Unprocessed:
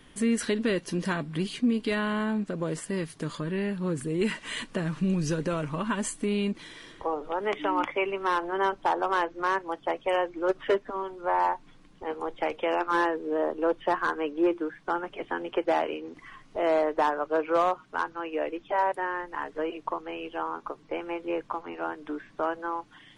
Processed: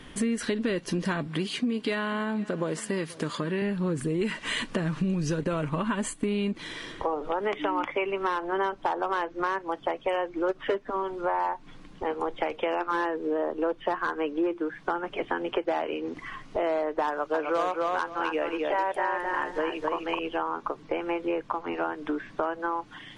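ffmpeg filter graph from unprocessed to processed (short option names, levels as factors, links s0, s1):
-filter_complex "[0:a]asettb=1/sr,asplit=3[s0][s1][s2];[s0]atrim=end=1.274[s3];[s1]atrim=start=1.27:end=3.62,asetpts=PTS-STARTPTS,afade=t=in:d=0.004:c=qsin,afade=t=out:st=2.346:d=0.004:c=qsin,highpass=f=250:p=1,aecho=1:1:483:0.0668,atrim=end_sample=103635[s4];[s2]atrim=start=3.616[s5];[s3][s4]acrossfade=d=0.004:c1=hsin:c2=qsin[s6];[s6][s5]acrossfade=d=0.004:c1=qsin:c2=hsin,asettb=1/sr,asplit=3[s7][s8][s9];[s7]atrim=end=5.414[s10];[s8]atrim=start=5.41:end=6.56,asetpts=PTS-STARTPTS,afade=t=in:d=0.004:c=qsin,afade=t=out:st=1.146:d=0.004:c=qsin,agate=range=0.398:threshold=0.0126:ratio=16:release=100:detection=peak,equalizer=f=5500:t=o:w=0.35:g=-7[s11];[s9]atrim=start=6.556[s12];[s10][s11]acrossfade=d=0.004:c1=hsin:c2=qsin[s13];[s13][s12]acrossfade=d=0.004:c1=qsin:c2=hsin,asettb=1/sr,asplit=3[s14][s15][s16];[s14]atrim=end=17.084[s17];[s15]atrim=start=17.08:end=20.19,asetpts=PTS-STARTPTS,afade=t=in:d=0.004:c=qsin,afade=t=out:st=3.106:d=0.004:c=qsin,highshelf=f=3100:g=10.5,asplit=2[s18][s19];[s19]adelay=260,lowpass=f=4100:p=1,volume=0.631,asplit=2[s20][s21];[s21]adelay=260,lowpass=f=4100:p=1,volume=0.16,asplit=2[s22][s23];[s23]adelay=260,lowpass=f=4100:p=1,volume=0.16[s24];[s18][s20][s22][s24]amix=inputs=4:normalize=0,atrim=end_sample=137151[s25];[s16]atrim=start=20.186[s26];[s17][s25]acrossfade=d=0.004:c1=hsin:c2=qsin[s27];[s27][s26]acrossfade=d=0.004:c1=qsin:c2=hsin,acompressor=threshold=0.02:ratio=4,highshelf=f=9200:g=-8.5,volume=2.51"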